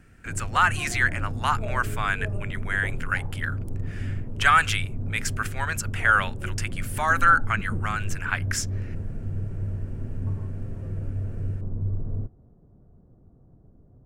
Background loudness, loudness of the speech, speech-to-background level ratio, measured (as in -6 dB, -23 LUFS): -33.0 LUFS, -25.0 LUFS, 8.0 dB